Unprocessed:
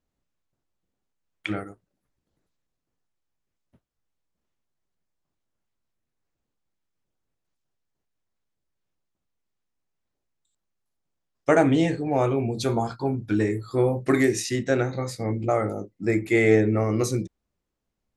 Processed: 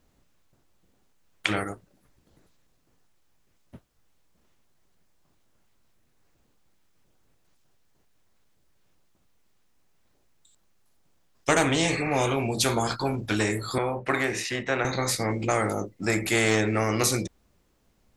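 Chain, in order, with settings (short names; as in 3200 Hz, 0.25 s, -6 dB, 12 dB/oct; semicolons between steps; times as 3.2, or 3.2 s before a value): 11.9–12.28 spectral repair 1100–2700 Hz both; 13.78–14.85 three-band isolator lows -12 dB, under 450 Hz, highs -20 dB, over 2500 Hz; in parallel at -9 dB: overloaded stage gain 11.5 dB; on the sum: spectral compressor 2:1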